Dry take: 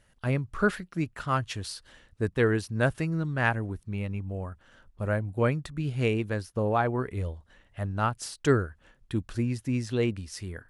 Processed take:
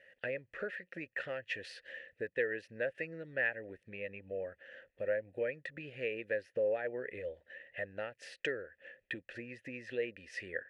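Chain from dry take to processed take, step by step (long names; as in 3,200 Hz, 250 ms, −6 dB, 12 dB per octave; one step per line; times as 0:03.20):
downward compressor 6 to 1, threshold −35 dBFS, peak gain reduction 17 dB
formant filter e
parametric band 2,000 Hz +9 dB 0.85 octaves
level +11.5 dB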